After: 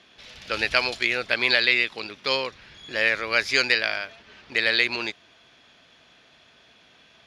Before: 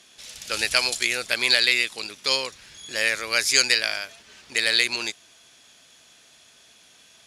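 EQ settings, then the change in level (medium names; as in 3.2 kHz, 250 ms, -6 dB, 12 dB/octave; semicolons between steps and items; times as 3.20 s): distance through air 310 m; treble shelf 5.9 kHz +6.5 dB; +4.0 dB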